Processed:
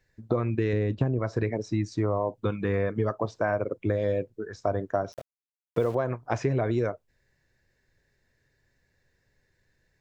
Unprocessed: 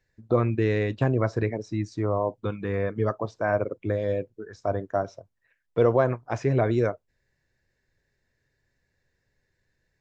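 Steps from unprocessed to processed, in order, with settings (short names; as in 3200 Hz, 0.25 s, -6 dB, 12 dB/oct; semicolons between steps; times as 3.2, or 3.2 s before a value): 0.73–1.19 tilt shelf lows +5.5 dB, about 670 Hz; compressor 12:1, threshold -25 dBFS, peak gain reduction 12 dB; 5.12–5.95 sample gate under -46.5 dBFS; gain +3.5 dB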